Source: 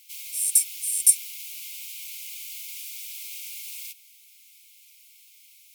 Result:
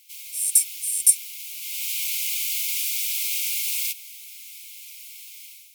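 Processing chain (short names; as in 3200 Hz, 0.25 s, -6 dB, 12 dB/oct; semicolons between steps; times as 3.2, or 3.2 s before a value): AGC gain up to 13 dB; gain -1 dB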